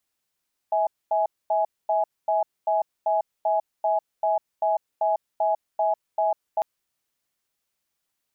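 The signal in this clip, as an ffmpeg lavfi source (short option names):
-f lavfi -i "aevalsrc='0.0794*(sin(2*PI*648*t)+sin(2*PI*835*t))*clip(min(mod(t,0.39),0.15-mod(t,0.39))/0.005,0,1)':d=5.9:s=44100"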